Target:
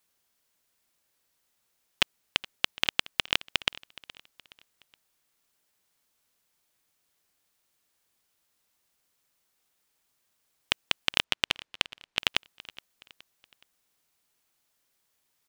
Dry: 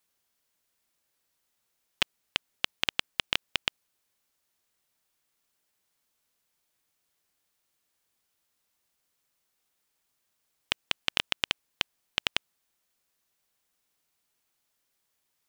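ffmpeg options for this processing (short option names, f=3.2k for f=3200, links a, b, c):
-filter_complex "[0:a]asettb=1/sr,asplit=3[a][b][c];[a]atrim=end=11.244[d];[b]atrim=start=11.24:end=12.19,asetpts=PTS-STARTPTS,afade=t=in:d=0.004:c=qsin,afade=t=out:st=0.946:d=0.004:c=qsin,adynamicsmooth=sensitivity=6.5:basefreq=4.9k[e];[c]atrim=start=12.186[f];[d][e]acrossfade=d=0.004:c1=hsin:c2=qsin[g];[g][f]acrossfade=d=0.004:c1=qsin:c2=hsin,asplit=2[h][i];[i]aecho=0:1:420|840|1260:0.1|0.042|0.0176[j];[h][j]amix=inputs=2:normalize=0,volume=2.5dB"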